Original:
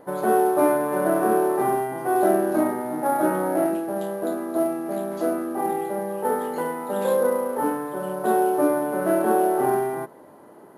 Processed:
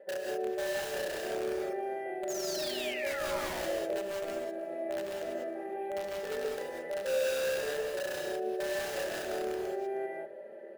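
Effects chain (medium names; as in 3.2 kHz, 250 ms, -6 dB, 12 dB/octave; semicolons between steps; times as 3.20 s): peaking EQ 61 Hz -10.5 dB 1.3 oct; hum notches 60/120/180/240/300/360/420 Hz; comb 5.1 ms, depth 89%; reverse; compression 10:1, threshold -27 dBFS, peak gain reduction 15.5 dB; reverse; vowel filter e; painted sound fall, 2.28–3.86 s, 390–7000 Hz -47 dBFS; in parallel at -3.5 dB: integer overflow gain 34 dB; on the sum: delay 313 ms -20.5 dB; gated-style reverb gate 220 ms rising, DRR -1 dB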